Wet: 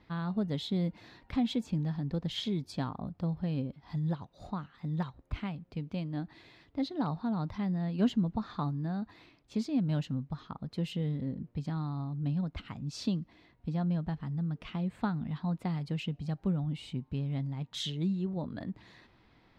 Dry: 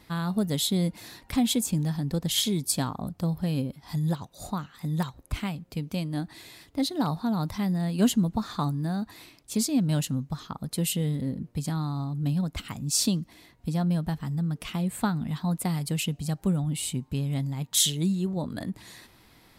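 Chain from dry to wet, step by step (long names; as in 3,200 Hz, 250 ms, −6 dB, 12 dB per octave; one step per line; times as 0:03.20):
high-frequency loss of the air 230 metres
level −5 dB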